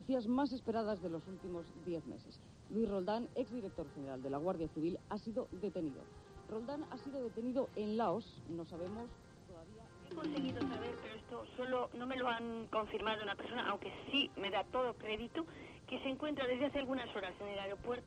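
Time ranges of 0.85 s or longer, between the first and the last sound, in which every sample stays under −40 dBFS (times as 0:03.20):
0:09.04–0:10.11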